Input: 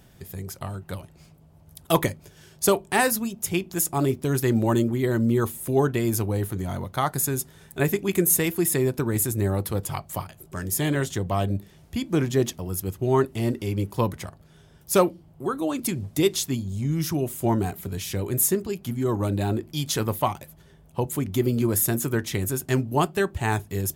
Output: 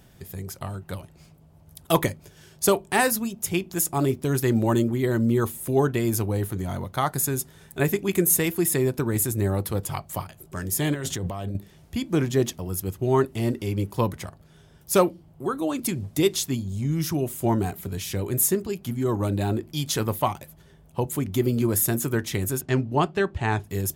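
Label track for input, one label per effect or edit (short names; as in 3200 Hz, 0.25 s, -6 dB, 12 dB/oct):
10.940000	11.550000	negative-ratio compressor -30 dBFS
22.610000	23.640000	LPF 4700 Hz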